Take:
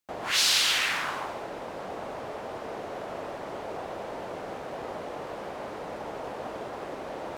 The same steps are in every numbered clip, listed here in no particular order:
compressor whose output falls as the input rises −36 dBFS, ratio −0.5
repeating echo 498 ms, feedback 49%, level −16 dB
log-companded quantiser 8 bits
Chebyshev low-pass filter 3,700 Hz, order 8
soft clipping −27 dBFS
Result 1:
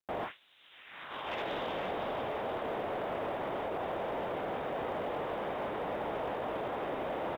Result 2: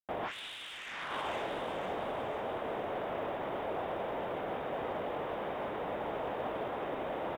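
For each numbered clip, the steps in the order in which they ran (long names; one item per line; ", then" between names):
repeating echo, then compressor whose output falls as the input rises, then Chebyshev low-pass filter, then soft clipping, then log-companded quantiser
Chebyshev low-pass filter, then log-companded quantiser, then soft clipping, then repeating echo, then compressor whose output falls as the input rises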